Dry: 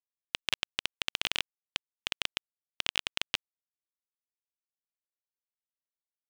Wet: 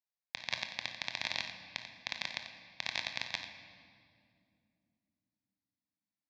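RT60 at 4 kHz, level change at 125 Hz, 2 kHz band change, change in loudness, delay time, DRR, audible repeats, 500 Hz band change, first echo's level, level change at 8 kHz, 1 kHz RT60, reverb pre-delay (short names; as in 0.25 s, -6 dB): 1.7 s, -1.5 dB, -2.5 dB, -5.0 dB, 57 ms, 4.0 dB, 2, -3.0 dB, -14.5 dB, -7.5 dB, 2.1 s, 9 ms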